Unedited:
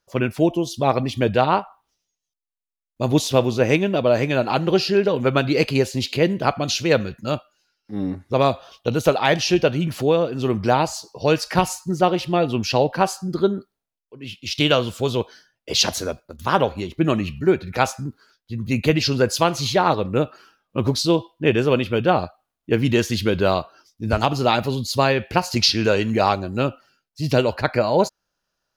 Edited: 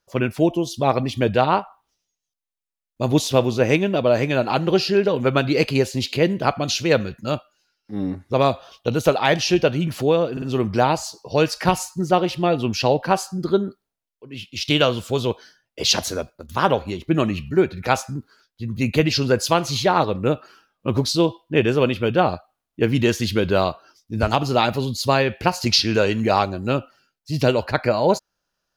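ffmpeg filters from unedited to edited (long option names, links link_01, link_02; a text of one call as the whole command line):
ffmpeg -i in.wav -filter_complex "[0:a]asplit=3[link_01][link_02][link_03];[link_01]atrim=end=10.372[link_04];[link_02]atrim=start=10.318:end=10.372[link_05];[link_03]atrim=start=10.318[link_06];[link_04][link_05]acrossfade=duration=0.004:curve1=hsin:curve2=hsin[link_07];[link_07][link_06]acrossfade=duration=0.004:curve1=hsin:curve2=hsin" out.wav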